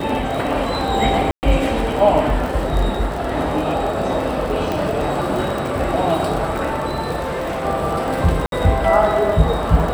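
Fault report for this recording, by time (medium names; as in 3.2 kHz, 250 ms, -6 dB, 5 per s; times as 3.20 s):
crackle 40 per s -23 dBFS
1.31–1.43 s: dropout 119 ms
4.72 s: pop
7.19–7.66 s: clipped -20 dBFS
8.46–8.52 s: dropout 62 ms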